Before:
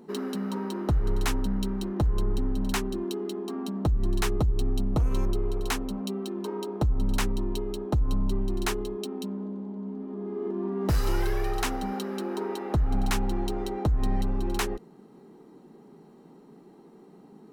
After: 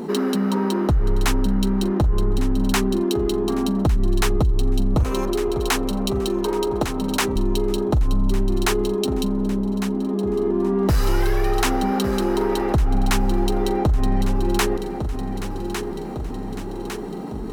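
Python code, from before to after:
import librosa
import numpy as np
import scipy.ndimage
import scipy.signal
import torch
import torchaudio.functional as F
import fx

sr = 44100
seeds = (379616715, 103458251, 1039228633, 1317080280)

y = fx.highpass(x, sr, hz=250.0, slope=12, at=(5.03, 7.36))
y = fx.echo_feedback(y, sr, ms=1154, feedback_pct=46, wet_db=-15.5)
y = fx.env_flatten(y, sr, amount_pct=50)
y = y * 10.0 ** (5.0 / 20.0)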